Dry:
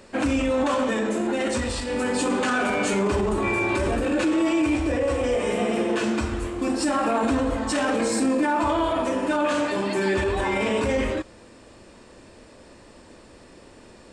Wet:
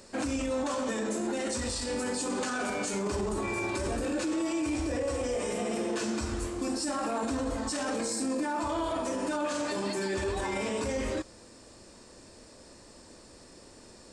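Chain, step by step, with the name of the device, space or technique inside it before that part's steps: over-bright horn tweeter (resonant high shelf 3.9 kHz +7 dB, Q 1.5; peak limiter -18.5 dBFS, peak gain reduction 8.5 dB); trim -5 dB

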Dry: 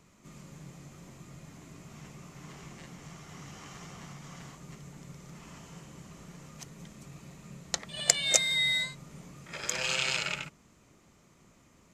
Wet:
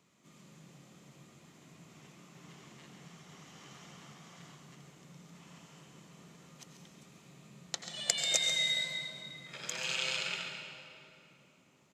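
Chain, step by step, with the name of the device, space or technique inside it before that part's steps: PA in a hall (high-pass 140 Hz 12 dB/octave; peaking EQ 3.4 kHz +5.5 dB 0.69 oct; delay 138 ms -10.5 dB; reverberation RT60 3.2 s, pre-delay 78 ms, DRR 4 dB); trim -8 dB

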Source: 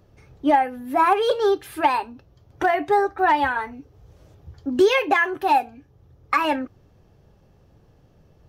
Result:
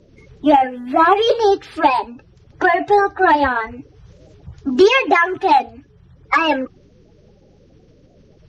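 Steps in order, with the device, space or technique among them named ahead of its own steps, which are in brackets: clip after many re-uploads (low-pass 6.8 kHz 24 dB/octave; coarse spectral quantiser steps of 30 dB); trim +6 dB

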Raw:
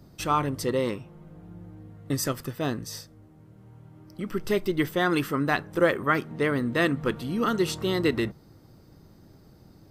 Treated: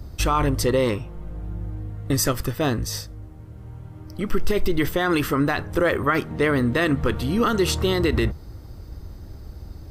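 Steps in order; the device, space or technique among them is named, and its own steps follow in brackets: car stereo with a boomy subwoofer (resonant low shelf 100 Hz +13.5 dB, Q 1.5; peak limiter -19 dBFS, peak gain reduction 9.5 dB); trim +8 dB

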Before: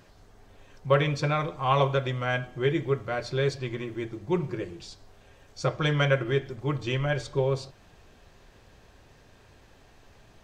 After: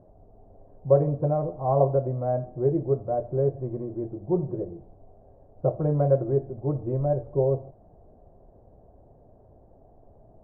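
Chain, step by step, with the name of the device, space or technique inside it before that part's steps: under water (low-pass 710 Hz 24 dB/octave; peaking EQ 670 Hz +8 dB 0.49 oct); trim +1.5 dB

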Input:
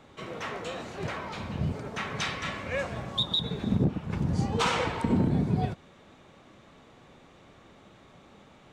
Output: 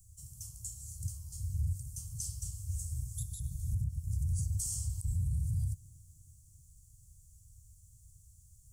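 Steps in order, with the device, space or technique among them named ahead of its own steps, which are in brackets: inverse Chebyshev band-stop 230–4000 Hz, stop band 50 dB; tape echo 313 ms, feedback 75%, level -23 dB; over-bright horn tweeter (resonant high shelf 2.8 kHz +10.5 dB, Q 3; peak limiter -34 dBFS, peak gain reduction 11 dB); trim +8 dB

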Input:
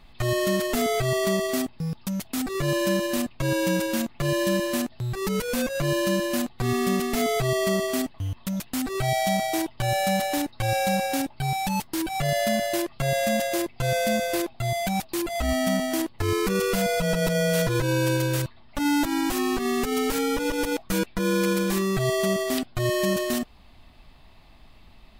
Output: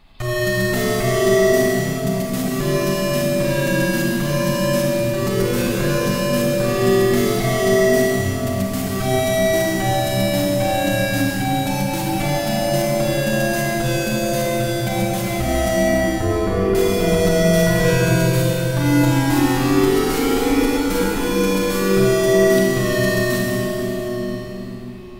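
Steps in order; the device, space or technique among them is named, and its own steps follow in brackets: 15.88–16.75 s: low-pass 1.3 kHz 12 dB/octave; cathedral (reverberation RT60 5.6 s, pre-delay 27 ms, DRR -5.5 dB)

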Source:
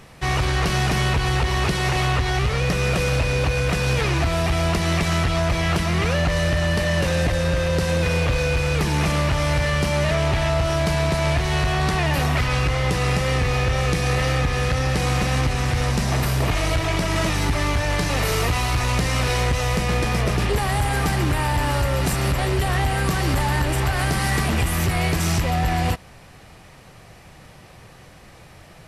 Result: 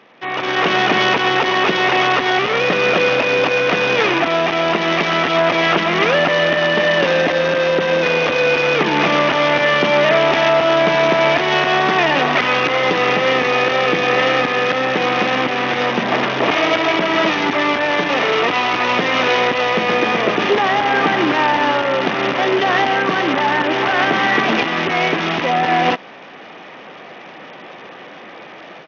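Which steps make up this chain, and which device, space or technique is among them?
Bluetooth headset (high-pass 240 Hz 24 dB/octave; level rider gain up to 13 dB; resampled via 8 kHz; SBC 64 kbps 48 kHz)

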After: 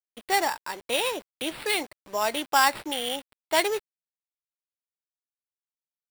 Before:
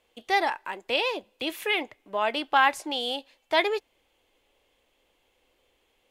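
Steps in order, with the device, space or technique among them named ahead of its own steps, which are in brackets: early 8-bit sampler (sample-rate reducer 6.4 kHz, jitter 0%; bit crusher 8-bit)

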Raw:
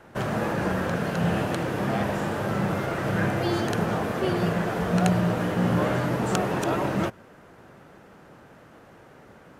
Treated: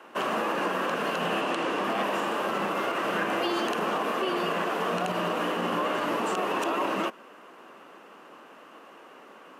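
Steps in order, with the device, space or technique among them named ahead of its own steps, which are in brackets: laptop speaker (high-pass 250 Hz 24 dB/octave; peaking EQ 1.1 kHz +9.5 dB 0.32 oct; peaking EQ 2.8 kHz +10.5 dB 0.3 oct; peak limiter -19 dBFS, peak gain reduction 12 dB); 1.41–1.84 s: low-pass 9.2 kHz 12 dB/octave

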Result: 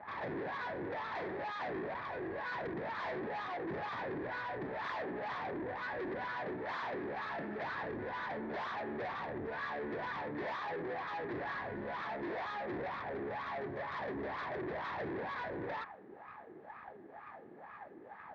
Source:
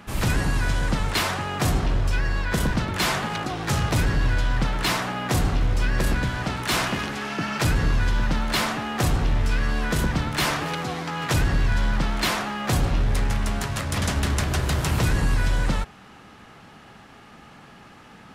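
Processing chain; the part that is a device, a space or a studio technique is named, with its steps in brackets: wah-wah guitar rig (wah-wah 2.1 Hz 340–1200 Hz, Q 6.1; valve stage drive 48 dB, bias 0.55; cabinet simulation 88–3800 Hz, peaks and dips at 1.3 kHz -6 dB, 1.8 kHz +9 dB, 2.9 kHz -9 dB); trim +10.5 dB

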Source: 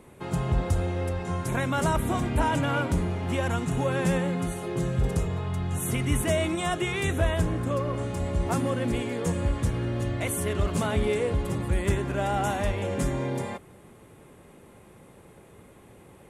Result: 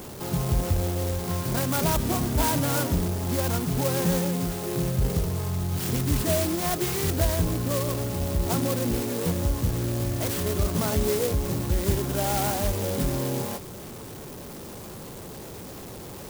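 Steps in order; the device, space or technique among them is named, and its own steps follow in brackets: early CD player with a faulty converter (jump at every zero crossing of -35.5 dBFS; sampling jitter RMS 0.13 ms)

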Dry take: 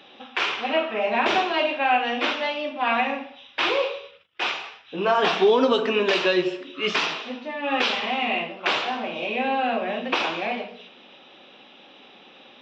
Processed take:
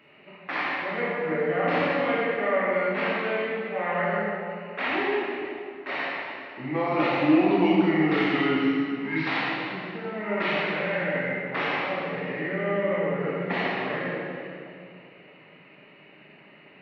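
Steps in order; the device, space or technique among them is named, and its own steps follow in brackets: slowed and reverbed (tape speed -25%; reverberation RT60 2.5 s, pre-delay 20 ms, DRR -4.5 dB); trim -8.5 dB

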